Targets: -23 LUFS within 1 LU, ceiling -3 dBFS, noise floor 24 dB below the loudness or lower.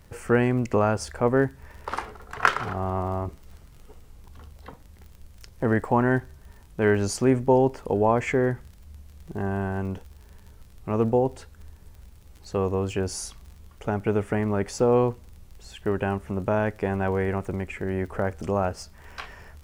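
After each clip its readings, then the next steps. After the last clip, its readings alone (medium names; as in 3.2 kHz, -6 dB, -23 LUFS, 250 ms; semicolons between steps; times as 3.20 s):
tick rate 33 per s; loudness -25.5 LUFS; peak level -2.0 dBFS; loudness target -23.0 LUFS
-> de-click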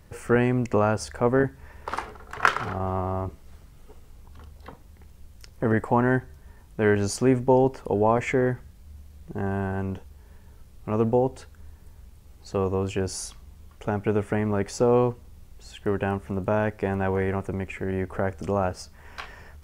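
tick rate 0.051 per s; loudness -25.5 LUFS; peak level -2.0 dBFS; loudness target -23.0 LUFS
-> trim +2.5 dB; peak limiter -3 dBFS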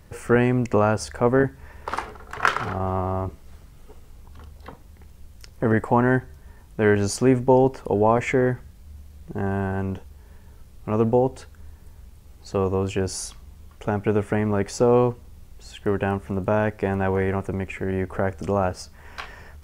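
loudness -23.0 LUFS; peak level -3.0 dBFS; noise floor -48 dBFS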